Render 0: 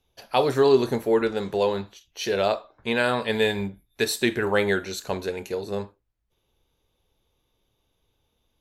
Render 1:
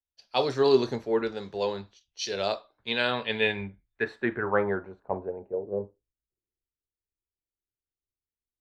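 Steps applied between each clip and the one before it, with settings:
low-pass filter sweep 5,200 Hz → 360 Hz, 0:02.51–0:06.31
multiband upward and downward expander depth 70%
level −6 dB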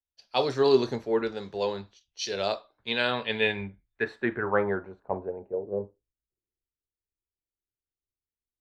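no processing that can be heard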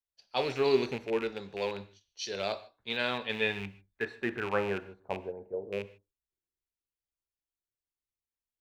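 loose part that buzzes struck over −37 dBFS, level −24 dBFS
on a send at −15.5 dB: convolution reverb, pre-delay 3 ms
on the sum: level −5 dB

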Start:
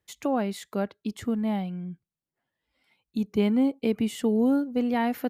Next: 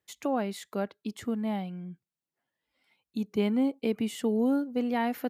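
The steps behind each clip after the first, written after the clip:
high-pass filter 170 Hz 6 dB per octave
level −2 dB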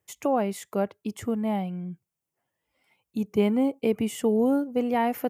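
graphic EQ with 15 bands 100 Hz +5 dB, 250 Hz −5 dB, 1,600 Hz −6 dB, 4,000 Hz −11 dB
level +6.5 dB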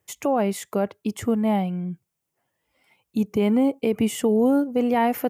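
brickwall limiter −18 dBFS, peak gain reduction 6.5 dB
level +5.5 dB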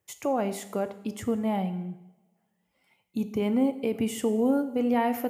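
coupled-rooms reverb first 0.87 s, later 2.4 s, from −25 dB, DRR 10 dB
level −5.5 dB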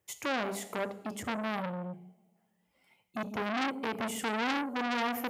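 mains-hum notches 50/100/150/200 Hz
saturating transformer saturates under 2,600 Hz

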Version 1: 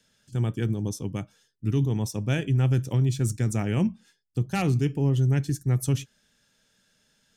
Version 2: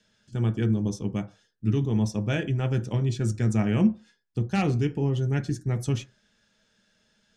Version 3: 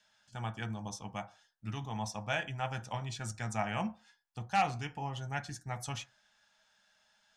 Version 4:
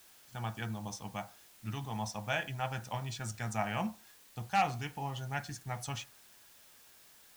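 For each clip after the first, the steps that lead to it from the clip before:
low-pass filter 6,000 Hz 12 dB per octave; on a send at −6 dB: convolution reverb RT60 0.30 s, pre-delay 5 ms
low shelf with overshoot 550 Hz −12 dB, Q 3; level −2.5 dB
background noise white −60 dBFS

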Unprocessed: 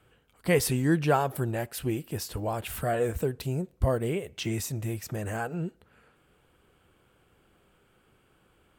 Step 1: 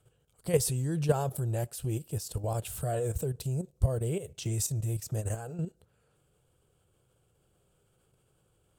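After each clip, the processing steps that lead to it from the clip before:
octave-band graphic EQ 125/250/500/1,000/2,000/8,000 Hz +8/−8/+3/−4/−10/+8 dB
output level in coarse steps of 10 dB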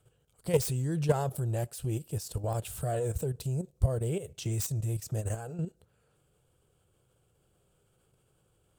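phase distortion by the signal itself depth 0.087 ms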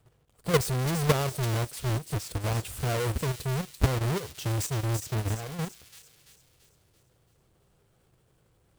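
each half-wave held at its own peak
delay with a high-pass on its return 337 ms, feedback 49%, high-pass 3,600 Hz, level −5 dB
level −1.5 dB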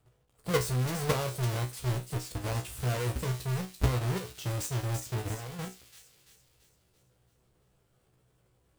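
tuned comb filter 62 Hz, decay 0.24 s, harmonics all, mix 90%
level +2.5 dB

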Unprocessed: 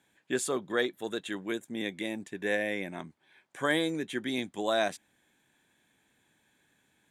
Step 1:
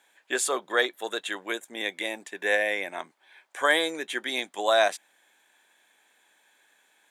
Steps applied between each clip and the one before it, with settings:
Chebyshev high-pass filter 660 Hz, order 2
level +8 dB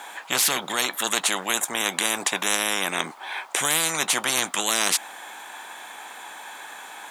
flat-topped bell 980 Hz +8.5 dB 1.1 octaves
every bin compressed towards the loudest bin 10 to 1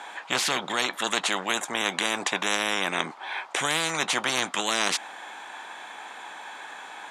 high-frequency loss of the air 79 metres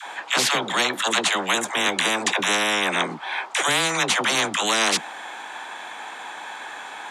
all-pass dispersion lows, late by 82 ms, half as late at 480 Hz
level +5 dB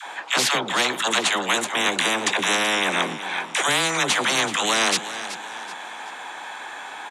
repeating echo 378 ms, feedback 40%, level −13 dB

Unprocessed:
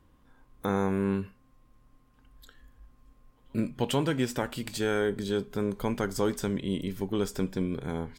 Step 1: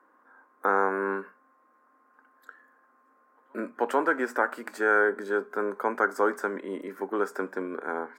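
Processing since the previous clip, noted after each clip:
Bessel high-pass filter 460 Hz, order 8
high shelf with overshoot 2,200 Hz −13.5 dB, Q 3
level +5.5 dB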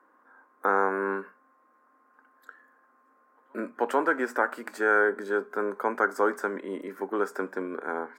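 no processing that can be heard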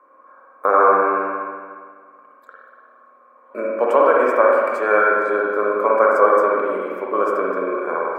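hollow resonant body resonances 580/1,100/2,300 Hz, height 18 dB, ringing for 25 ms
convolution reverb RT60 1.8 s, pre-delay 47 ms, DRR −3.5 dB
level −3 dB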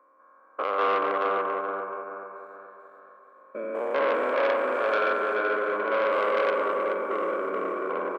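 spectrum averaged block by block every 200 ms
on a send: repeating echo 429 ms, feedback 41%, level −3 dB
on the sum: saturating transformer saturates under 1,400 Hz
level −7.5 dB

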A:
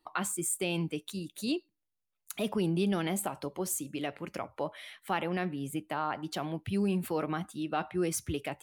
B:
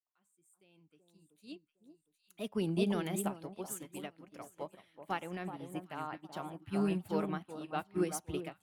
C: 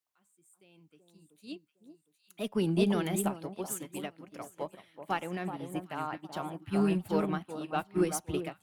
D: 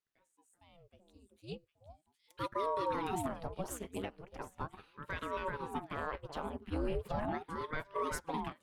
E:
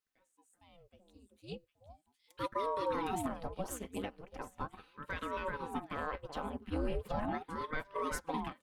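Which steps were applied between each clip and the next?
fade in at the beginning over 2.68 s; delay that swaps between a low-pass and a high-pass 380 ms, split 1,200 Hz, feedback 59%, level −4 dB; expander for the loud parts 2.5 to 1, over −41 dBFS
high-pass filter 58 Hz; in parallel at −10 dB: asymmetric clip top −38 dBFS; on the sum: level +3 dB
high-shelf EQ 7,200 Hz −11 dB; brickwall limiter −26.5 dBFS, peak gain reduction 11.5 dB; ring modulator whose carrier an LFO sweeps 440 Hz, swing 80%, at 0.38 Hz; level +1.5 dB
comb filter 3.9 ms, depth 32%

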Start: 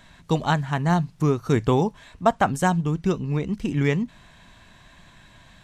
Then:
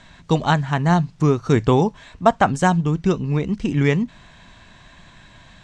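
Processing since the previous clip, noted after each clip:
low-pass filter 7,900 Hz 24 dB per octave
level +4 dB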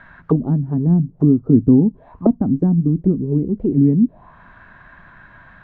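envelope-controlled low-pass 260–1,600 Hz down, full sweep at −15.5 dBFS
level −1 dB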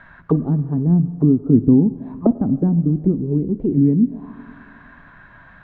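spring reverb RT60 2.1 s, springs 46/52/58 ms, chirp 25 ms, DRR 15 dB
level −1 dB

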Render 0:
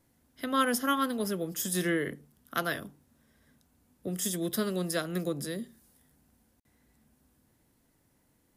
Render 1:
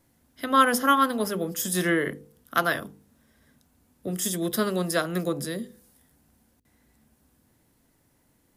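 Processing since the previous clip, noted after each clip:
hum removal 50.06 Hz, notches 10
dynamic equaliser 1,000 Hz, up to +6 dB, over −42 dBFS, Q 0.88
level +4 dB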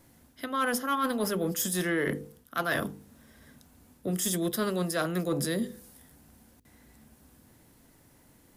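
reversed playback
downward compressor 6 to 1, threshold −32 dBFS, peak gain reduction 17.5 dB
reversed playback
soft clipping −23.5 dBFS, distortion −24 dB
level +6.5 dB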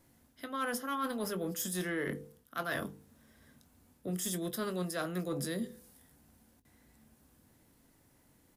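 double-tracking delay 22 ms −13 dB
level −7 dB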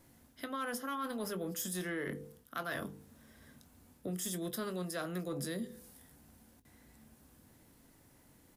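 downward compressor 2.5 to 1, threshold −41 dBFS, peak gain reduction 7.5 dB
level +3 dB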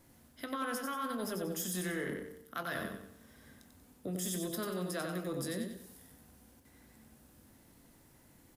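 repeating echo 93 ms, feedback 39%, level −5 dB

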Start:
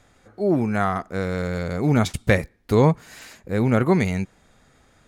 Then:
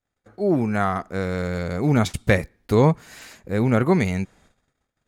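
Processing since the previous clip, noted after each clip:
noise gate −53 dBFS, range −32 dB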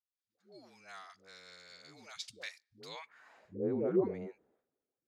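all-pass dispersion highs, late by 142 ms, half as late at 400 Hz
band-pass filter sweep 4,700 Hz → 400 Hz, 0:02.87–0:03.53
level −7 dB

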